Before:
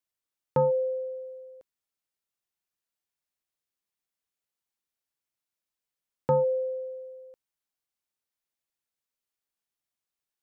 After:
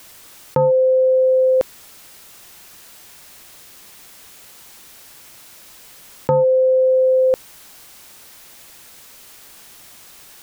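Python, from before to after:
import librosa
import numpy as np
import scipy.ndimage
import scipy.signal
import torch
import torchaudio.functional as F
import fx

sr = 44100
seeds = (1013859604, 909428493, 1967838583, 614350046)

y = fx.env_flatten(x, sr, amount_pct=100)
y = y * 10.0 ** (6.0 / 20.0)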